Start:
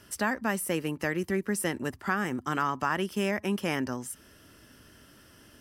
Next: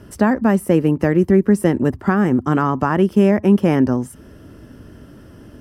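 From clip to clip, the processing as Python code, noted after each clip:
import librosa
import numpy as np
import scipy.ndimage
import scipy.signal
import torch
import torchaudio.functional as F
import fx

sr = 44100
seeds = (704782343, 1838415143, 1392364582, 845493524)

y = fx.tilt_shelf(x, sr, db=10.0, hz=1100.0)
y = y * librosa.db_to_amplitude(8.0)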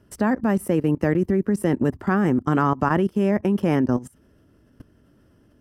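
y = fx.level_steps(x, sr, step_db=19)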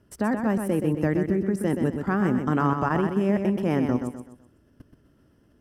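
y = fx.echo_feedback(x, sr, ms=126, feedback_pct=37, wet_db=-6.5)
y = y * librosa.db_to_amplitude(-4.0)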